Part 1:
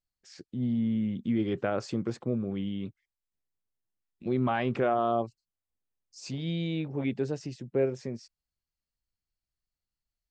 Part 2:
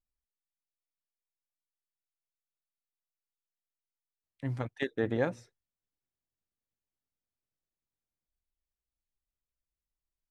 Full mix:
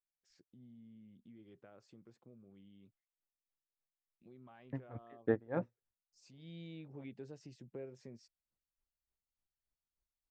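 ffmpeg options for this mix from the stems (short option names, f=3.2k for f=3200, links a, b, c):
-filter_complex "[0:a]acompressor=threshold=-41dB:ratio=2,volume=-10.5dB,afade=t=in:st=6.33:d=0.24:silence=0.298538[a];[1:a]lowpass=1.5k,aeval=exprs='val(0)*pow(10,-30*(0.5-0.5*cos(2*PI*3.4*n/s))/20)':c=same,adelay=300,volume=1dB[b];[a][b]amix=inputs=2:normalize=0"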